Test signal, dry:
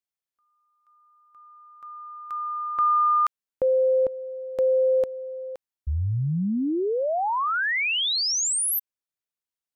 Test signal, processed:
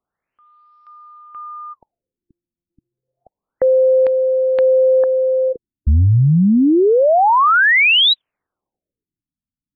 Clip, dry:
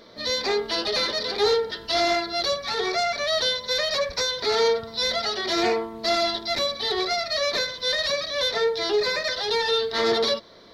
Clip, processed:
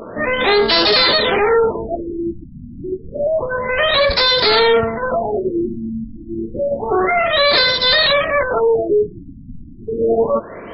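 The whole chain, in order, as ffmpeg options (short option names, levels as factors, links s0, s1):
-af "apsyclip=23.7,afftfilt=real='re*lt(b*sr/1024,290*pow(5600/290,0.5+0.5*sin(2*PI*0.29*pts/sr)))':imag='im*lt(b*sr/1024,290*pow(5600/290,0.5+0.5*sin(2*PI*0.29*pts/sr)))':win_size=1024:overlap=0.75,volume=0.355"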